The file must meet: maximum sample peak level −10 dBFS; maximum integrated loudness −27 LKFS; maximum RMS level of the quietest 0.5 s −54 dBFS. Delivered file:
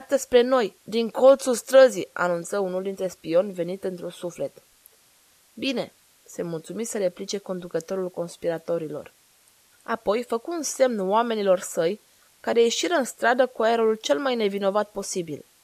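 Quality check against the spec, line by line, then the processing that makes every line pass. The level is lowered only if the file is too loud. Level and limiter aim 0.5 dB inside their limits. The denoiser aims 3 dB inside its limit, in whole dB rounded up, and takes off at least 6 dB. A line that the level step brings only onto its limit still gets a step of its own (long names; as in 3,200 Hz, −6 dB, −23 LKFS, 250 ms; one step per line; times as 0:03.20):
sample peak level −5.5 dBFS: out of spec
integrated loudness −24.0 LKFS: out of spec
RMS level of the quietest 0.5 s −59 dBFS: in spec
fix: level −3.5 dB
brickwall limiter −10.5 dBFS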